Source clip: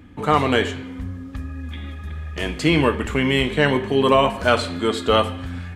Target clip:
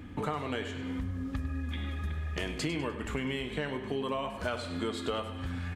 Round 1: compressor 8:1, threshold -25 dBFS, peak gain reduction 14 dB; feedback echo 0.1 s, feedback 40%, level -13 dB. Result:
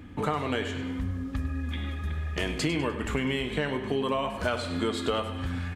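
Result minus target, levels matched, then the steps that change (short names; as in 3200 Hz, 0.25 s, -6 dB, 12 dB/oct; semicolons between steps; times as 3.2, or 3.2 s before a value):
compressor: peak gain reduction -5.5 dB
change: compressor 8:1, threshold -31 dBFS, peak gain reduction 19.5 dB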